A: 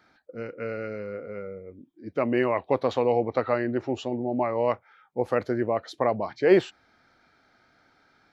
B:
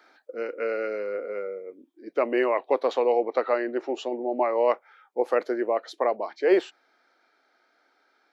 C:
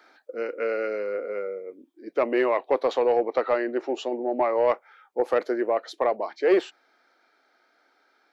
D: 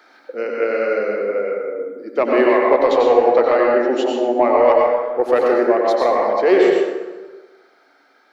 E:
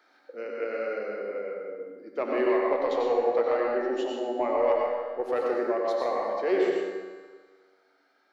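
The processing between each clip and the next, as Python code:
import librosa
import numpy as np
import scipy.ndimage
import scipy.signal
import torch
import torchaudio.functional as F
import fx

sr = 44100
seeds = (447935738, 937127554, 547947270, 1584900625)

y1 = scipy.signal.sosfilt(scipy.signal.butter(4, 340.0, 'highpass', fs=sr, output='sos'), x)
y1 = fx.low_shelf(y1, sr, hz=430.0, db=3.5)
y1 = fx.rider(y1, sr, range_db=4, speed_s=2.0)
y2 = 10.0 ** (-12.0 / 20.0) * np.tanh(y1 / 10.0 ** (-12.0 / 20.0))
y2 = F.gain(torch.from_numpy(y2), 1.5).numpy()
y3 = fx.echo_feedback(y2, sr, ms=122, feedback_pct=49, wet_db=-16.5)
y3 = fx.rev_plate(y3, sr, seeds[0], rt60_s=1.3, hf_ratio=0.5, predelay_ms=80, drr_db=-1.5)
y3 = F.gain(torch.from_numpy(y3), 5.5).numpy()
y4 = fx.comb_fb(y3, sr, f0_hz=95.0, decay_s=1.6, harmonics='all', damping=0.0, mix_pct=80)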